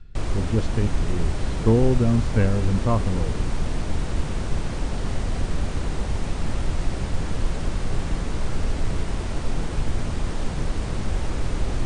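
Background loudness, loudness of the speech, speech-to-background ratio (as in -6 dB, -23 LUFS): -29.0 LUFS, -24.0 LUFS, 5.0 dB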